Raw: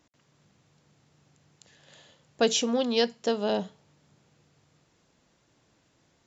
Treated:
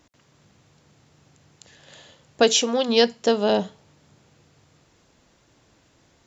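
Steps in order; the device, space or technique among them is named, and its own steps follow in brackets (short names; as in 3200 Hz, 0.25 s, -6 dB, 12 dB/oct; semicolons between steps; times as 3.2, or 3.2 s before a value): low shelf boost with a cut just above (low shelf 110 Hz +5 dB; bell 160 Hz -4 dB 0.74 oct); 2.42–2.88 HPF 250 Hz -> 540 Hz 6 dB/oct; gain +7 dB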